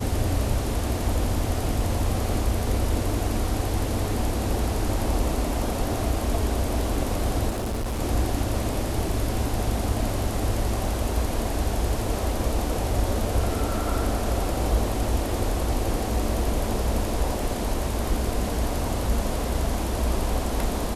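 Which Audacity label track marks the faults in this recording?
7.490000	8.000000	clipped -24.5 dBFS

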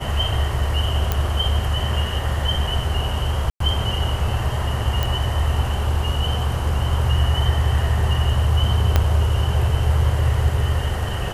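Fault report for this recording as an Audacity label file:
1.120000	1.120000	pop -6 dBFS
3.500000	3.600000	gap 0.103 s
5.030000	5.030000	pop
8.960000	8.960000	pop -3 dBFS

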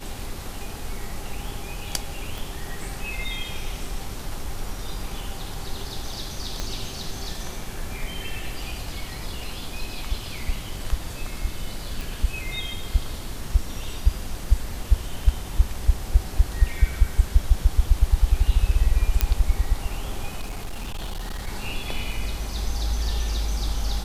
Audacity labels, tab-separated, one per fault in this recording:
2.380000	2.380000	pop
6.600000	6.600000	pop -13 dBFS
12.010000	12.010000	pop
19.210000	19.210000	pop -3 dBFS
20.410000	21.470000	clipped -27 dBFS

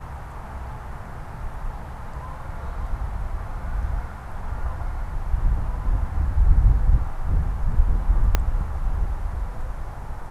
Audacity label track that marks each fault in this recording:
8.350000	8.350000	pop -5 dBFS

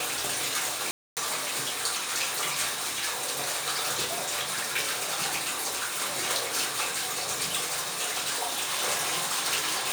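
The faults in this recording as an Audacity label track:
0.910000	1.170000	gap 0.258 s

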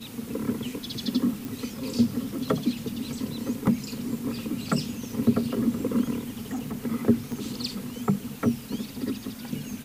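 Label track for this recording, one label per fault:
1.450000	1.450000	pop
6.400000	6.780000	clipped -27.5 dBFS
7.320000	7.320000	pop

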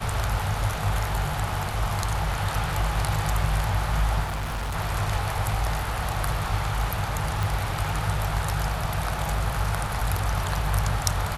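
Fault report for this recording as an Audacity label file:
4.230000	4.760000	clipped -26 dBFS
7.430000	7.430000	pop

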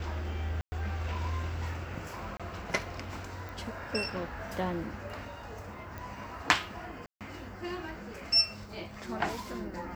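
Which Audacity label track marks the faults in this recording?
0.610000	0.720000	gap 0.11 s
2.370000	2.400000	gap 26 ms
3.490000	3.490000	pop
5.980000	5.980000	pop
7.060000	7.210000	gap 0.147 s

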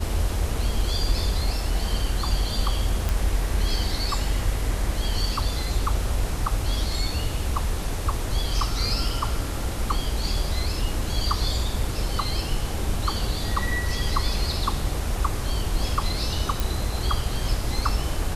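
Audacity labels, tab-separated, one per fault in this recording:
3.090000	3.090000	pop
16.600000	16.600000	pop

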